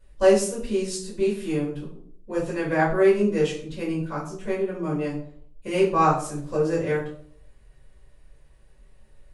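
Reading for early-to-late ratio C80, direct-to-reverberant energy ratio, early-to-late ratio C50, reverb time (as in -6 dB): 10.5 dB, -6.5 dB, 6.5 dB, 0.60 s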